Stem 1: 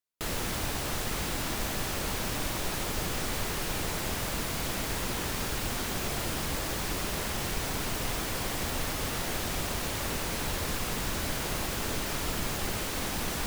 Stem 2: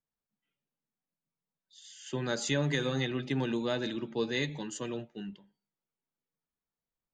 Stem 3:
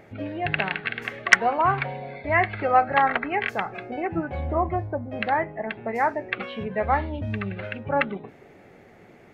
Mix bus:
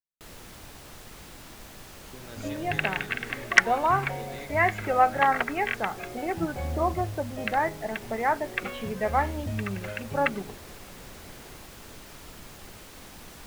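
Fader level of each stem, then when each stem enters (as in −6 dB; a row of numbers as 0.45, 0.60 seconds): −13.5, −14.0, −2.0 decibels; 0.00, 0.00, 2.25 seconds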